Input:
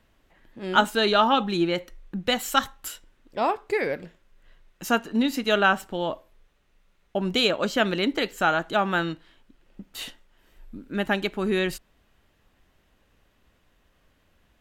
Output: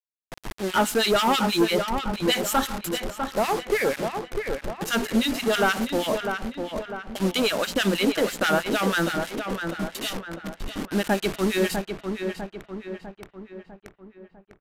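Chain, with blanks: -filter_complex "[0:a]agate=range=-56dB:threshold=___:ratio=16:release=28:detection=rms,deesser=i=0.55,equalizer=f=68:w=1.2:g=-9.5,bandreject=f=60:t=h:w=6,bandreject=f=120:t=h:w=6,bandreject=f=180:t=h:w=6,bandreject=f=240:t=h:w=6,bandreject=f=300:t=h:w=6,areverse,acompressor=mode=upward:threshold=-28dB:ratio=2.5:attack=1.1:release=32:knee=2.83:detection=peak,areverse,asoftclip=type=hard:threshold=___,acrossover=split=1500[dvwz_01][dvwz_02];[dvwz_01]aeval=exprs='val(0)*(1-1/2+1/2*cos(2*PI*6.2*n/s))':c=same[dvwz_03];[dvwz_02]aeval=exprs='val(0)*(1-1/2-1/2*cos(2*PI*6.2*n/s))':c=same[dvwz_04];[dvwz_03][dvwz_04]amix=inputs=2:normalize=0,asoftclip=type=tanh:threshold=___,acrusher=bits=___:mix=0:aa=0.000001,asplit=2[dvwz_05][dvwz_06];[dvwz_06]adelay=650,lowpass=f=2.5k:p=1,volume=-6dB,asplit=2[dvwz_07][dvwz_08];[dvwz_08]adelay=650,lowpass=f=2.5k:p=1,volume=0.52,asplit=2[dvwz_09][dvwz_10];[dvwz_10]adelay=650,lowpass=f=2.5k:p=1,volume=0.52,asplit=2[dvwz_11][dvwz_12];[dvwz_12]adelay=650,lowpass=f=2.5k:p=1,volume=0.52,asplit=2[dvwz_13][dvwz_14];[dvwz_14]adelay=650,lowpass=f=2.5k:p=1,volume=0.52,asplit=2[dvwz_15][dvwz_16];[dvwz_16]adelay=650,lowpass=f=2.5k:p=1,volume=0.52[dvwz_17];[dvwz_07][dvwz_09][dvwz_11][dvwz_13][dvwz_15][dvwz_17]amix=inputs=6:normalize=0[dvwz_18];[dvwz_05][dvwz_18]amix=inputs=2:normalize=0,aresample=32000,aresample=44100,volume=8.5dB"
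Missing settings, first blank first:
-59dB, -17dB, -23.5dB, 6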